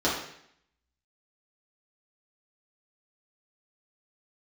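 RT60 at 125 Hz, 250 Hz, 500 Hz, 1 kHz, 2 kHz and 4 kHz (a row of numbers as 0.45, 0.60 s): 0.70, 0.75, 0.70, 0.70, 0.75, 0.70 s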